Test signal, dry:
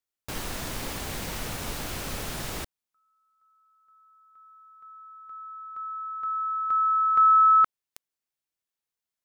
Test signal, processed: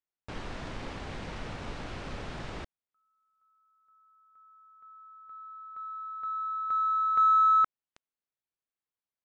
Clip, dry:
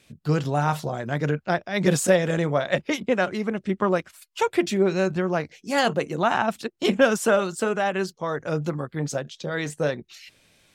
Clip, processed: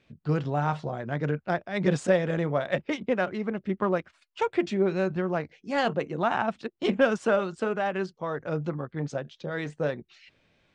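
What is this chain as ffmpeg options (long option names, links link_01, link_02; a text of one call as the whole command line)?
ffmpeg -i in.wav -af "adynamicsmooth=sensitivity=4:basefreq=5200,aemphasis=mode=reproduction:type=50fm,aresample=22050,aresample=44100,volume=-4dB" out.wav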